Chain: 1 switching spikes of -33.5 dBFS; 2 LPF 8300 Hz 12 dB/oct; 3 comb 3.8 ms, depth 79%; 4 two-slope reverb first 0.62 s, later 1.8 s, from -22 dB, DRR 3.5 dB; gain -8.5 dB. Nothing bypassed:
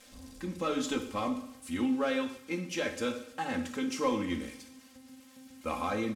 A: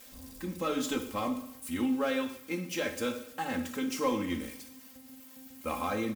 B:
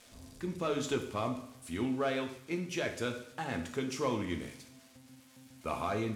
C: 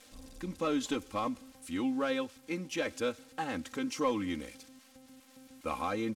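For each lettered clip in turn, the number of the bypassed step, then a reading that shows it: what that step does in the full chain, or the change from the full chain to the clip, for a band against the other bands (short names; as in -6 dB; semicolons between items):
2, 8 kHz band +2.0 dB; 3, 125 Hz band +6.0 dB; 4, momentary loudness spread change -10 LU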